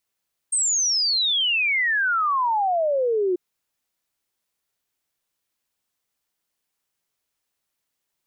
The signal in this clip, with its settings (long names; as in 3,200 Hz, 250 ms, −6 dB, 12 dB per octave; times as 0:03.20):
exponential sine sweep 8,600 Hz → 350 Hz 2.84 s −18.5 dBFS